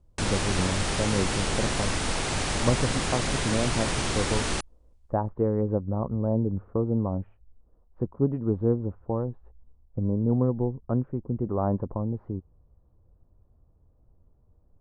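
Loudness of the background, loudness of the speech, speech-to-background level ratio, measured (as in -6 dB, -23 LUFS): -28.0 LUFS, -29.0 LUFS, -1.0 dB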